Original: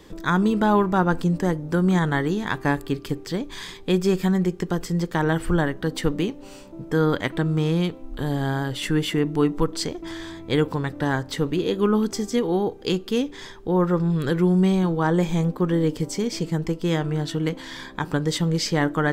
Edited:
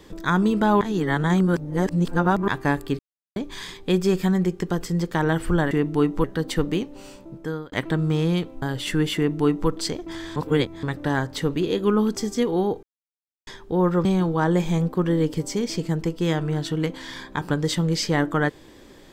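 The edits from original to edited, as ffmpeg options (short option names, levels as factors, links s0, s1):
-filter_complex "[0:a]asplit=14[s0][s1][s2][s3][s4][s5][s6][s7][s8][s9][s10][s11][s12][s13];[s0]atrim=end=0.812[s14];[s1]atrim=start=0.808:end=2.482,asetpts=PTS-STARTPTS,areverse[s15];[s2]atrim=start=2.478:end=2.99,asetpts=PTS-STARTPTS,afade=t=out:st=0.508:d=0.004:c=hsin[s16];[s3]atrim=start=2.99:end=3.36,asetpts=PTS-STARTPTS,volume=0[s17];[s4]atrim=start=3.36:end=5.712,asetpts=PTS-STARTPTS,afade=t=in:d=0.004:c=hsin[s18];[s5]atrim=start=9.118:end=9.652[s19];[s6]atrim=start=5.708:end=7.19,asetpts=PTS-STARTPTS,afade=t=out:st=0.932:d=0.55[s20];[s7]atrim=start=7.19:end=8.092,asetpts=PTS-STARTPTS,afade=t=in:d=0.004:c=hsin[s21];[s8]atrim=start=8.578:end=10.322[s22];[s9]atrim=start=10.318:end=10.792,asetpts=PTS-STARTPTS,areverse[s23];[s10]atrim=start=10.788:end=12.79,asetpts=PTS-STARTPTS,afade=t=out:st=1.998:d=0.004:c=hsin[s24];[s11]atrim=start=12.79:end=13.43,asetpts=PTS-STARTPTS,volume=0[s25];[s12]atrim=start=13.43:end=14.012,asetpts=PTS-STARTPTS,afade=t=in:d=0.004:c=hsin[s26];[s13]atrim=start=14.678[s27];[s14][s15]acrossfade=d=0.004:c1=hsin:c2=hsin[s28];[s16][s17][s18]concat=n=3:v=0:a=1[s29];[s28][s29]acrossfade=d=0.004:c1=hsin:c2=hsin[s30];[s30][s19]acrossfade=d=0.004:c1=hsin:c2=hsin[s31];[s20][s21]concat=n=2:v=0:a=1[s32];[s31][s32]acrossfade=d=0.004:c1=hsin:c2=hsin[s33];[s33][s22]acrossfade=d=0.004:c1=hsin:c2=hsin[s34];[s34][s23]acrossfade=d=0.004:c1=hsin:c2=hsin[s35];[s24][s25][s26]concat=n=3:v=0:a=1[s36];[s35][s36]acrossfade=d=0.004:c1=hsin:c2=hsin[s37];[s37][s27]acrossfade=d=0.004:c1=hsin:c2=hsin"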